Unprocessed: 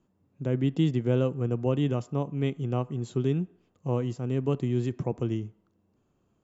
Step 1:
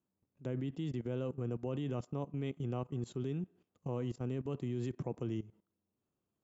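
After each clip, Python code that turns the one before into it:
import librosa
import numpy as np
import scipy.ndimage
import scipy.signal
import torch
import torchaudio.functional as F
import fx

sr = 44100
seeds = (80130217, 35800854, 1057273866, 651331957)

y = fx.highpass(x, sr, hz=86.0, slope=6)
y = fx.level_steps(y, sr, step_db=17)
y = F.gain(torch.from_numpy(y), -2.5).numpy()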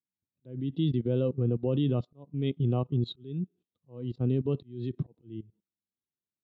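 y = fx.auto_swell(x, sr, attack_ms=370.0)
y = fx.lowpass_res(y, sr, hz=3900.0, q=6.5)
y = fx.spectral_expand(y, sr, expansion=1.5)
y = F.gain(torch.from_numpy(y), 7.0).numpy()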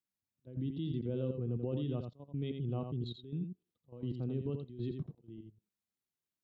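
y = fx.level_steps(x, sr, step_db=12)
y = y + 10.0 ** (-6.5 / 20.0) * np.pad(y, (int(85 * sr / 1000.0), 0))[:len(y)]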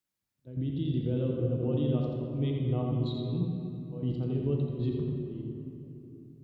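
y = fx.room_shoebox(x, sr, seeds[0], volume_m3=160.0, walls='hard', distance_m=0.42)
y = F.gain(torch.from_numpy(y), 4.0).numpy()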